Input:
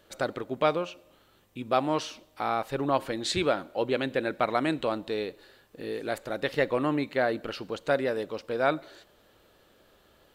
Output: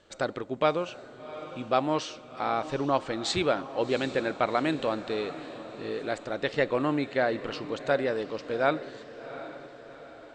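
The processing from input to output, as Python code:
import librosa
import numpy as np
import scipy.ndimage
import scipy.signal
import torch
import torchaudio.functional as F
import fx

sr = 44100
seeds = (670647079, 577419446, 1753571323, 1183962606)

y = scipy.signal.sosfilt(scipy.signal.butter(16, 8500.0, 'lowpass', fs=sr, output='sos'), x)
y = fx.echo_diffused(y, sr, ms=748, feedback_pct=50, wet_db=-13.5)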